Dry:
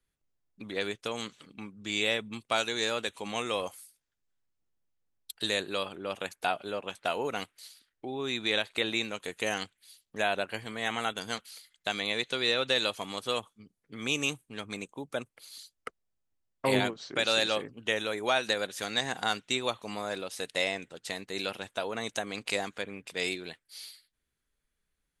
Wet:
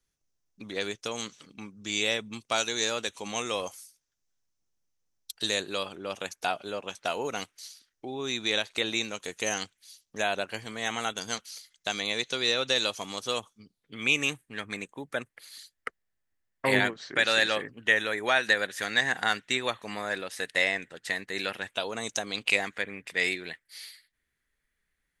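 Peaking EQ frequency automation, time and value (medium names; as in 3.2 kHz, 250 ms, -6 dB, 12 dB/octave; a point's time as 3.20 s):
peaking EQ +12 dB 0.53 oct
13.55 s 5.9 kHz
14.24 s 1.8 kHz
21.67 s 1.8 kHz
22.00 s 8.5 kHz
22.64 s 1.9 kHz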